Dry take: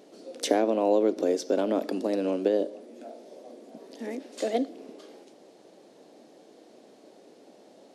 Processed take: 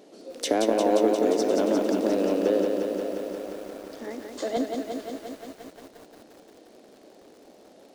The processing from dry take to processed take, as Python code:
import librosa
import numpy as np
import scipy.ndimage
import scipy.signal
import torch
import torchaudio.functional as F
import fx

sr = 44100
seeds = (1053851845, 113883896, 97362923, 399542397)

p1 = 10.0 ** (-22.0 / 20.0) * np.tanh(x / 10.0 ** (-22.0 / 20.0))
p2 = x + F.gain(torch.from_numpy(p1), -5.0).numpy()
p3 = fx.cabinet(p2, sr, low_hz=270.0, low_slope=12, high_hz=8000.0, hz=(520.0, 1100.0, 2500.0), db=(-4, 6, -8), at=(3.23, 4.57))
p4 = fx.echo_crushed(p3, sr, ms=176, feedback_pct=80, bits=8, wet_db=-4.5)
y = F.gain(torch.from_numpy(p4), -2.5).numpy()